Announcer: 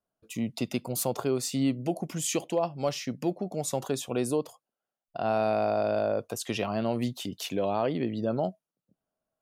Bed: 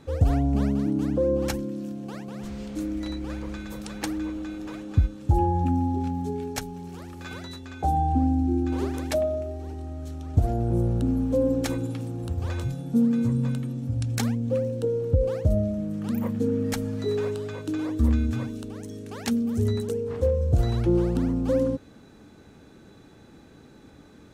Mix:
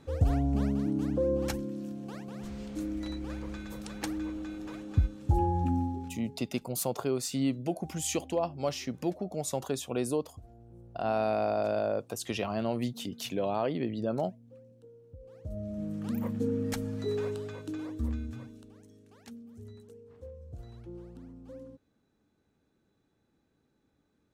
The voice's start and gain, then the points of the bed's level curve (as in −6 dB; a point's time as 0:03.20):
5.80 s, −2.5 dB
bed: 0:05.80 −5 dB
0:06.59 −28.5 dB
0:15.20 −28.5 dB
0:15.83 −5.5 dB
0:17.38 −5.5 dB
0:19.47 −23.5 dB